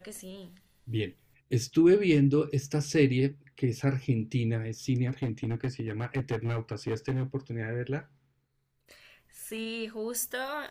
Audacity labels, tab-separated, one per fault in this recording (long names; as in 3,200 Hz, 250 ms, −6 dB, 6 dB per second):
5.080000	7.230000	clipping −25.5 dBFS